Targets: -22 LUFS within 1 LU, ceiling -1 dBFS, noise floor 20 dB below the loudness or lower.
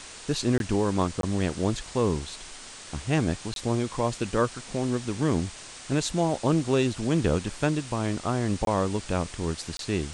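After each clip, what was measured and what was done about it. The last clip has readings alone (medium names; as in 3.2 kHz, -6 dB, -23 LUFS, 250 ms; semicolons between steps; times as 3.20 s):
dropouts 5; longest dropout 22 ms; noise floor -44 dBFS; noise floor target -48 dBFS; loudness -27.5 LUFS; peak level -9.0 dBFS; loudness target -22.0 LUFS
-> interpolate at 0.58/1.21/3.54/8.65/9.77 s, 22 ms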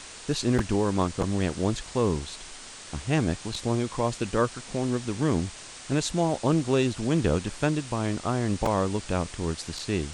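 dropouts 0; noise floor -44 dBFS; noise floor target -48 dBFS
-> noise print and reduce 6 dB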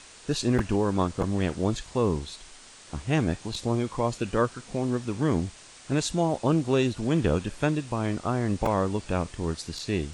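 noise floor -49 dBFS; loudness -27.5 LUFS; peak level -9.0 dBFS; loudness target -22.0 LUFS
-> trim +5.5 dB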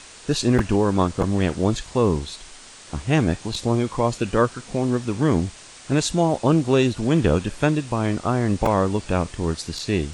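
loudness -22.0 LUFS; peak level -3.5 dBFS; noise floor -44 dBFS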